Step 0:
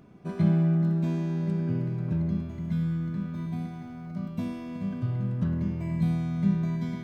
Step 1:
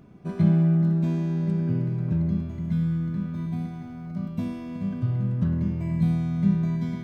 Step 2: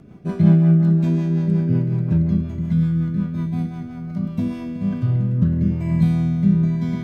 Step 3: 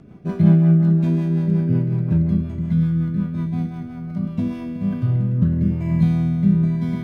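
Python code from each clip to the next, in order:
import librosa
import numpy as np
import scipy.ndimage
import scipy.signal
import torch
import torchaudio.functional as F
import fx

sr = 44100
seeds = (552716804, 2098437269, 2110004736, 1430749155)

y1 = fx.low_shelf(x, sr, hz=220.0, db=5.0)
y2 = fx.rotary_switch(y1, sr, hz=5.5, then_hz=0.9, switch_at_s=4.14)
y2 = F.gain(torch.from_numpy(y2), 7.5).numpy()
y3 = np.interp(np.arange(len(y2)), np.arange(len(y2))[::3], y2[::3])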